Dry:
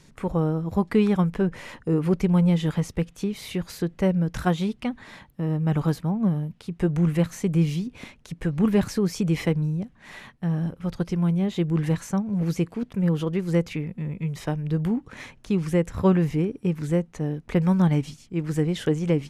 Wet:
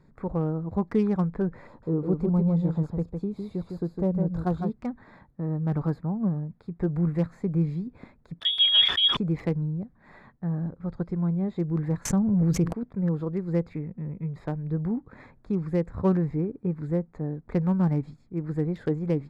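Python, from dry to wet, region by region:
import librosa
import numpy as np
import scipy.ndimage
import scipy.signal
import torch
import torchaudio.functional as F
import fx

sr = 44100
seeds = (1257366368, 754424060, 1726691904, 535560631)

y = fx.chain(x, sr, fx.peak_eq(hz=1900.0, db=-12.5, octaves=0.86),
    fx.echo_single(ms=156, db=-5.0), at=(1.67, 4.7))
y = fx.chain(y, sr, fx.peak_eq(hz=190.0, db=8.0, octaves=0.31),
    fx.freq_invert(carrier_hz=3500),
    fx.sustainer(db_per_s=83.0), at=(8.4, 9.17))
y = fx.chain(y, sr, fx.low_shelf(hz=160.0, db=8.0),
    fx.env_flatten(amount_pct=70), at=(12.05, 12.73))
y = fx.wiener(y, sr, points=15)
y = fx.high_shelf(y, sr, hz=7300.0, db=-5.5)
y = y * 10.0 ** (-3.5 / 20.0)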